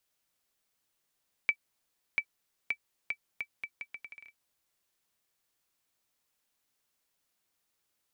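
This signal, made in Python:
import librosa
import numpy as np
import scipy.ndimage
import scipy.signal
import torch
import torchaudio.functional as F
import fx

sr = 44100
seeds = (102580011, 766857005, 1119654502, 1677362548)

y = fx.bouncing_ball(sr, first_gap_s=0.69, ratio=0.76, hz=2310.0, decay_ms=70.0, level_db=-15.0)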